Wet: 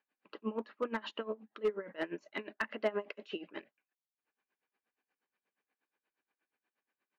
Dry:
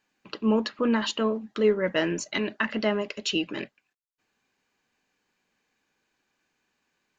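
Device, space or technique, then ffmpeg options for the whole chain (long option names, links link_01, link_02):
helicopter radio: -filter_complex "[0:a]highpass=300,lowpass=2500,aeval=exprs='val(0)*pow(10,-20*(0.5-0.5*cos(2*PI*8.4*n/s))/20)':channel_layout=same,asoftclip=type=hard:threshold=-19.5dB,asettb=1/sr,asplit=3[link_01][link_02][link_03];[link_01]atrim=end=2.744[link_04];[link_02]atrim=start=2.74:end=3.53,asetpts=PTS-STARTPTS,afade=type=in:duration=0.004:curve=qsin,afade=type=out:start_time=0.786:duration=0.004:curve=qsin,equalizer=frequency=720:width=0.34:gain=4[link_05];[link_03]atrim=start=3.526[link_06];[link_04][link_05]acrossfade=duration=0.004:curve1=hsin:curve2=qsin[link_07];[link_07][link_06]acrossfade=duration=0.004:curve1=qsin:curve2=hsin,volume=-5.5dB"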